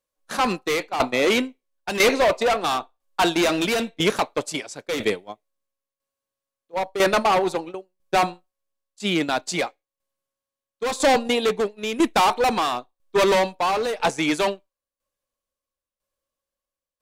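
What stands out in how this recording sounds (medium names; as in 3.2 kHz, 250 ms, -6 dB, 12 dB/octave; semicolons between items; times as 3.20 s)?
tremolo saw down 1 Hz, depth 70%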